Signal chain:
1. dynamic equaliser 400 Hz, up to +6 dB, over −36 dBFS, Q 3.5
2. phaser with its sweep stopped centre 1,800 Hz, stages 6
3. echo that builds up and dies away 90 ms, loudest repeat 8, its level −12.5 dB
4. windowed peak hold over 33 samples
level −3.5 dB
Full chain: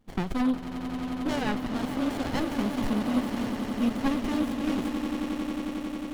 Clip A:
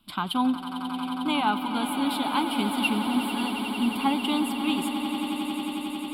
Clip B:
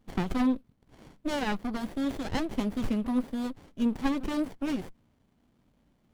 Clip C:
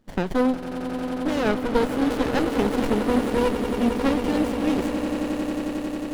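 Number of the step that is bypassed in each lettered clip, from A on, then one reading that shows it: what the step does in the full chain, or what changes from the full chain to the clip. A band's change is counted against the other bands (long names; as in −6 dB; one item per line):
4, distortion level −1 dB
3, change in momentary loudness spread +2 LU
2, 500 Hz band +7.5 dB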